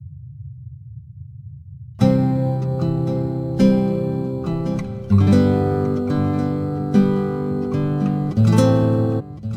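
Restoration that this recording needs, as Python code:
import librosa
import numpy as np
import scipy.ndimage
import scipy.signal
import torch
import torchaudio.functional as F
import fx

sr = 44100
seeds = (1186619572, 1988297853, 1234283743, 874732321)

y = fx.noise_reduce(x, sr, print_start_s=0.68, print_end_s=1.18, reduce_db=25.0)
y = fx.fix_echo_inverse(y, sr, delay_ms=1062, level_db=-12.5)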